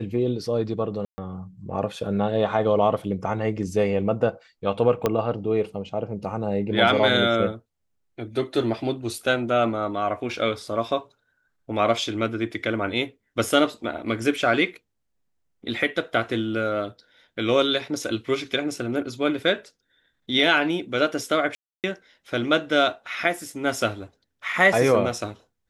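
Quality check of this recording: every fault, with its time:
0:01.05–0:01.18: drop-out 130 ms
0:05.06: click −8 dBFS
0:21.55–0:21.84: drop-out 288 ms

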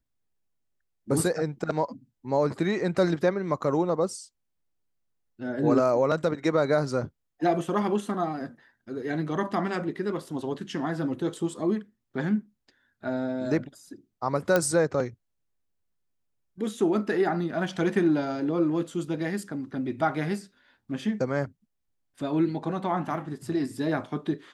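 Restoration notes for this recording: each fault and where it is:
0:14.56: click −9 dBFS

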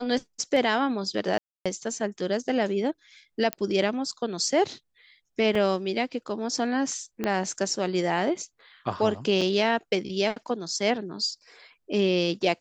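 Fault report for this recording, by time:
0:01.38–0:01.66: drop-out 276 ms
0:03.53: click −12 dBFS
0:05.55: drop-out 3.8 ms
0:07.24: click −14 dBFS
0:09.41: drop-out 4.5 ms

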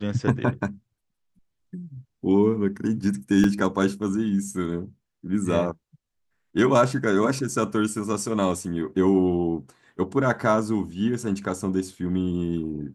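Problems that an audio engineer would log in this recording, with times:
0:03.44: drop-out 2.6 ms

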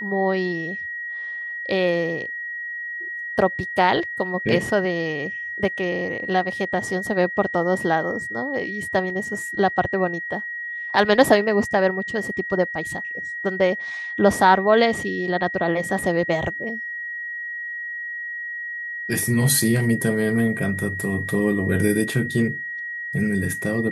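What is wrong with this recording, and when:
whistle 1,900 Hz −28 dBFS

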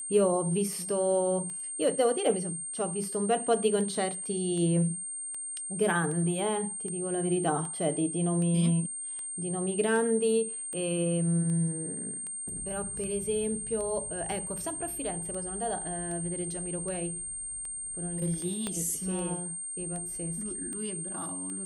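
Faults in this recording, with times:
scratch tick 78 rpm
whistle 8,700 Hz −35 dBFS
0:18.67: click −18 dBFS

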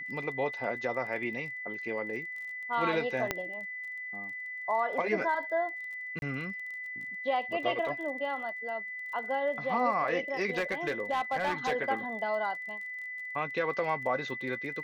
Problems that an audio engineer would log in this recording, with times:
surface crackle 27 per second −41 dBFS
whistle 2,000 Hz −37 dBFS
0:03.31: click −13 dBFS
0:06.19–0:06.22: drop-out 31 ms
0:10.57–0:11.73: clipping −25 dBFS

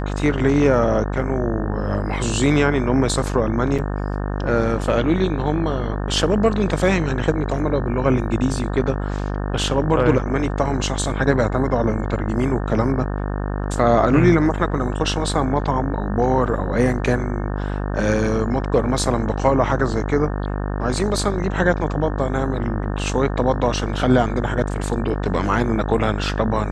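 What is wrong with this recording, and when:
mains buzz 50 Hz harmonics 36 −24 dBFS
0:03.78–0:03.79: drop-out 6.4 ms

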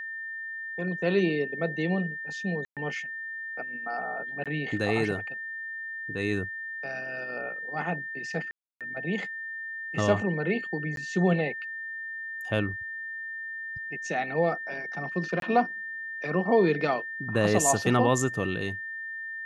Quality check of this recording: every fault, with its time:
whistle 1,800 Hz −34 dBFS
0:02.65–0:02.77: drop-out 117 ms
0:04.44–0:04.46: drop-out 17 ms
0:08.51–0:08.81: drop-out 297 ms
0:10.96–0:10.97: drop-out 12 ms
0:15.40–0:15.42: drop-out 22 ms

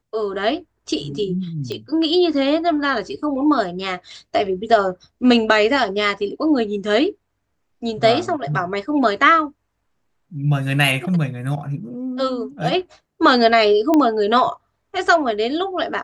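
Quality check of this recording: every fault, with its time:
0:01.72: click −16 dBFS
0:13.94: click −6 dBFS

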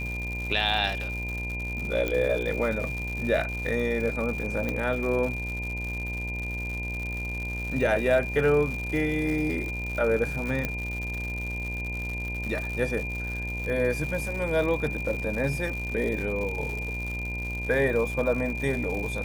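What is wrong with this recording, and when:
mains buzz 60 Hz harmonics 17 −34 dBFS
surface crackle 170 per second −32 dBFS
whistle 2,400 Hz −33 dBFS
0:02.08: click −15 dBFS
0:04.69: click −16 dBFS
0:10.65: click −14 dBFS

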